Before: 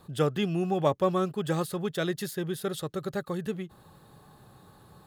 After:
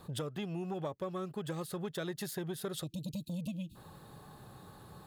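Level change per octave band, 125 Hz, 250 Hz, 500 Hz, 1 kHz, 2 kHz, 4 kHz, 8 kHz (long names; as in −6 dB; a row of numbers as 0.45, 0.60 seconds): −8.0, −8.5, −11.5, −12.5, −10.0, −6.5, −4.0 decibels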